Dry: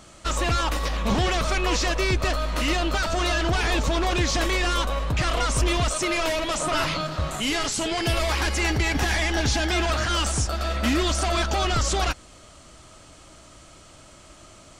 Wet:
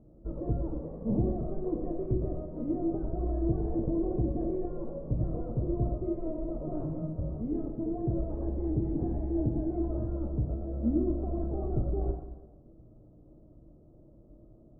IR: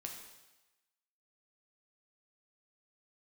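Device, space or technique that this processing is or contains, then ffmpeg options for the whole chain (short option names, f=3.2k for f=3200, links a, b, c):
next room: -filter_complex "[0:a]lowpass=f=490:w=0.5412,lowpass=f=490:w=1.3066[a];[1:a]atrim=start_sample=2205[b];[a][b]afir=irnorm=-1:irlink=0"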